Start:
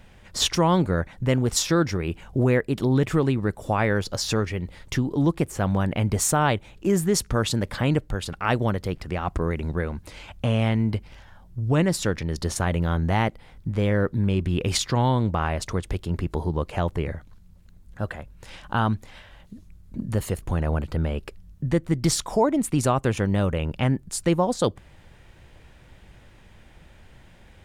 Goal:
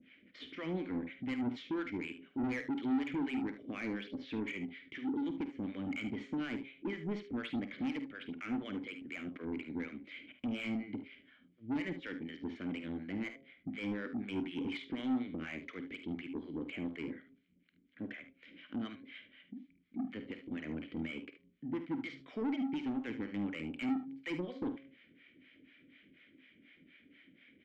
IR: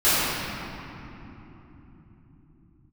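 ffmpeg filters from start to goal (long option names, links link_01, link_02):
-filter_complex "[0:a]deesser=0.95,lowpass=3800,bandreject=frequency=135.4:width_type=h:width=4,bandreject=frequency=270.8:width_type=h:width=4,bandreject=frequency=406.2:width_type=h:width=4,bandreject=frequency=541.6:width_type=h:width=4,bandreject=frequency=677:width_type=h:width=4,bandreject=frequency=812.4:width_type=h:width=4,bandreject=frequency=947.8:width_type=h:width=4,bandreject=frequency=1083.2:width_type=h:width=4,acrossover=split=590[link_01][link_02];[link_01]aeval=exprs='val(0)*(1-1/2+1/2*cos(2*PI*4.1*n/s))':channel_layout=same[link_03];[link_02]aeval=exprs='val(0)*(1-1/2-1/2*cos(2*PI*4.1*n/s))':channel_layout=same[link_04];[link_03][link_04]amix=inputs=2:normalize=0,asplit=3[link_05][link_06][link_07];[link_05]bandpass=frequency=270:width_type=q:width=8,volume=0dB[link_08];[link_06]bandpass=frequency=2290:width_type=q:width=8,volume=-6dB[link_09];[link_07]bandpass=frequency=3010:width_type=q:width=8,volume=-9dB[link_10];[link_08][link_09][link_10]amix=inputs=3:normalize=0,asplit=2[link_11][link_12];[link_12]highpass=frequency=720:poles=1,volume=27dB,asoftclip=type=tanh:threshold=-20.5dB[link_13];[link_11][link_13]amix=inputs=2:normalize=0,lowpass=frequency=1600:poles=1,volume=-6dB,asoftclip=type=tanh:threshold=-23dB,aecho=1:1:50|74:0.251|0.251,asplit=2[link_14][link_15];[1:a]atrim=start_sample=2205,atrim=end_sample=3969,asetrate=70560,aresample=44100[link_16];[link_15][link_16]afir=irnorm=-1:irlink=0,volume=-29.5dB[link_17];[link_14][link_17]amix=inputs=2:normalize=0,volume=-5dB"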